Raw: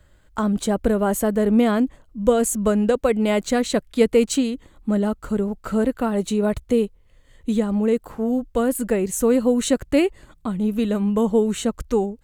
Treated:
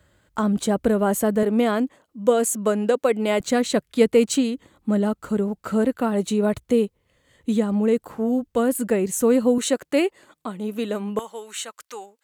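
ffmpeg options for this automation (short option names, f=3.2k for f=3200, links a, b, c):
-af "asetnsamples=n=441:p=0,asendcmd='1.43 highpass f 260;3.4 highpass f 110;9.58 highpass f 320;11.19 highpass f 1200',highpass=87"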